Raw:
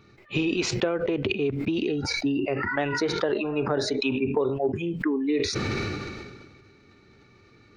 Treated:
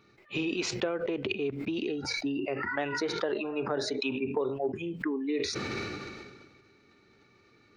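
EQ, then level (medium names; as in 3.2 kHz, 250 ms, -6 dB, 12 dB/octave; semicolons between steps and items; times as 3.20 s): bass shelf 140 Hz -9.5 dB; hum notches 50/100/150 Hz; -4.5 dB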